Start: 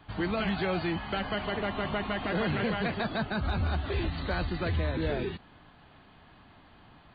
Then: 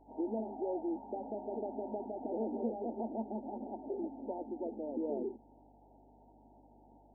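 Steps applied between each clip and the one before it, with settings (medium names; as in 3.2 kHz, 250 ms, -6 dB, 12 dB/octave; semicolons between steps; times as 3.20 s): dynamic bell 720 Hz, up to -4 dB, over -47 dBFS, Q 1.3; FFT band-pass 210–950 Hz; hum 50 Hz, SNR 27 dB; trim -2.5 dB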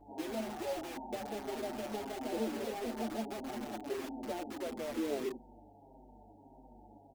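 in parallel at -3.5 dB: integer overflow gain 39.5 dB; on the sum: endless flanger 6.5 ms -1.6 Hz; trim +2.5 dB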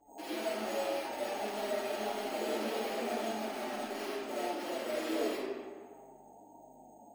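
RIAA curve recording; careless resampling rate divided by 6×, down filtered, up hold; algorithmic reverb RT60 1.5 s, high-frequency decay 0.65×, pre-delay 30 ms, DRR -9.5 dB; trim -4.5 dB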